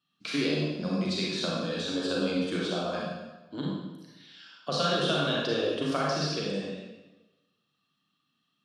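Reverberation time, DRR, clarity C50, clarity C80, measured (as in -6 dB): 1.1 s, -4.5 dB, -1.5 dB, 1.5 dB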